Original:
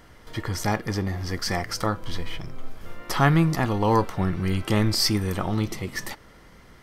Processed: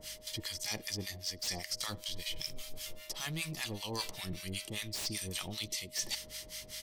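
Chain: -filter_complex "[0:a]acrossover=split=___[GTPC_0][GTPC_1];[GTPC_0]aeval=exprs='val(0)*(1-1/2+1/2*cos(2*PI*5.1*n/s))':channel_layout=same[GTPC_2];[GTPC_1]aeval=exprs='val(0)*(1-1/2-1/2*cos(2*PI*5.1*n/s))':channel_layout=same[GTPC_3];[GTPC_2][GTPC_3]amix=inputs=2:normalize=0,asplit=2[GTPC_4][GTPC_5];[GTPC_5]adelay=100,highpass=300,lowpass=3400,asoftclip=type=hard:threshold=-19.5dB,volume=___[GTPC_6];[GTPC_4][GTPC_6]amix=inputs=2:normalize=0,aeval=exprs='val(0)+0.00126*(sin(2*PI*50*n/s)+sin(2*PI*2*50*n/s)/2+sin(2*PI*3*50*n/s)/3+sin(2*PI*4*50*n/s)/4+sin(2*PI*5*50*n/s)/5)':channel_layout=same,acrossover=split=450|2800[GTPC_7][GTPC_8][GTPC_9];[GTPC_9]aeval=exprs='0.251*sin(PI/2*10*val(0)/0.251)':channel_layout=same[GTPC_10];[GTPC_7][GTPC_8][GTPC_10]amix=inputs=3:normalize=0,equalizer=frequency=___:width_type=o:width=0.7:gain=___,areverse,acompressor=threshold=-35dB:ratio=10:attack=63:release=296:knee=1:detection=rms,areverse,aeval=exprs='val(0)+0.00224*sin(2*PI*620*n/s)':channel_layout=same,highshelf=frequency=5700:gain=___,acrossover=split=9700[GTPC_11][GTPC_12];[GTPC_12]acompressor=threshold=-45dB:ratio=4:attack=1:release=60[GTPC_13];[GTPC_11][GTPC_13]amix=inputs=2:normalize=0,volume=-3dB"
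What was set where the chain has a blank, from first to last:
890, -28dB, 1400, -8, 3.5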